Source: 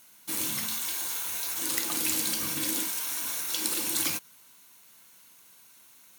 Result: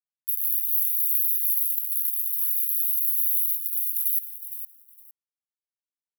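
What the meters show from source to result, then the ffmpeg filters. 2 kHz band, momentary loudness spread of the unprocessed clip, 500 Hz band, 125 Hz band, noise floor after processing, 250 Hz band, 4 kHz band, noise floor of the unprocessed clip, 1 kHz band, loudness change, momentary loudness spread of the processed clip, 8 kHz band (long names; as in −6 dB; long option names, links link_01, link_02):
below −15 dB, 4 LU, below −15 dB, below −15 dB, below −85 dBFS, below −25 dB, below −15 dB, −56 dBFS, below −15 dB, +6.5 dB, 10 LU, −3.5 dB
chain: -af "asoftclip=type=tanh:threshold=-13.5dB,areverse,acompressor=threshold=-39dB:ratio=10,areverse,lowshelf=frequency=130:gain=9.5,bandreject=frequency=119.8:width_type=h:width=4,bandreject=frequency=239.6:width_type=h:width=4,bandreject=frequency=359.4:width_type=h:width=4,bandreject=frequency=479.2:width_type=h:width=4,bandreject=frequency=599:width_type=h:width=4,bandreject=frequency=718.8:width_type=h:width=4,bandreject=frequency=838.6:width_type=h:width=4,bandreject=frequency=958.4:width_type=h:width=4,bandreject=frequency=1078.2:width_type=h:width=4,bandreject=frequency=1198:width_type=h:width=4,bandreject=frequency=1317.8:width_type=h:width=4,bandreject=frequency=1437.6:width_type=h:width=4,bandreject=frequency=1557.4:width_type=h:width=4,bandreject=frequency=1677.2:width_type=h:width=4,bandreject=frequency=1797:width_type=h:width=4,bandreject=frequency=1916.8:width_type=h:width=4,bandreject=frequency=2036.6:width_type=h:width=4,bandreject=frequency=2156.4:width_type=h:width=4,bandreject=frequency=2276.2:width_type=h:width=4,bandreject=frequency=2396:width_type=h:width=4,bandreject=frequency=2515.8:width_type=h:width=4,bandreject=frequency=2635.6:width_type=h:width=4,bandreject=frequency=2755.4:width_type=h:width=4,bandreject=frequency=2875.2:width_type=h:width=4,bandreject=frequency=2995:width_type=h:width=4,bandreject=frequency=3114.8:width_type=h:width=4,bandreject=frequency=3234.6:width_type=h:width=4,bandreject=frequency=3354.4:width_type=h:width=4,bandreject=frequency=3474.2:width_type=h:width=4,bandreject=frequency=3594:width_type=h:width=4,bandreject=frequency=3713.8:width_type=h:width=4,bandreject=frequency=3833.6:width_type=h:width=4,bandreject=frequency=3953.4:width_type=h:width=4,bandreject=frequency=4073.2:width_type=h:width=4,bandreject=frequency=4193:width_type=h:width=4,bandreject=frequency=4312.8:width_type=h:width=4,bandreject=frequency=4432.6:width_type=h:width=4,bandreject=frequency=4552.4:width_type=h:width=4,bandreject=frequency=4672.2:width_type=h:width=4,bandreject=frequency=4792:width_type=h:width=4,flanger=delay=1.4:depth=9.6:regen=15:speed=1.7:shape=sinusoidal,alimiter=level_in=14dB:limit=-24dB:level=0:latency=1:release=376,volume=-14dB,highshelf=frequency=5500:gain=3.5,acrusher=bits=6:mix=0:aa=0.000001,aexciter=amount=15.4:drive=7:freq=10000,aeval=exprs='val(0)*sin(2*PI*450*n/s)':channel_layout=same,highpass=85,aecho=1:1:461|922:0.282|0.0479"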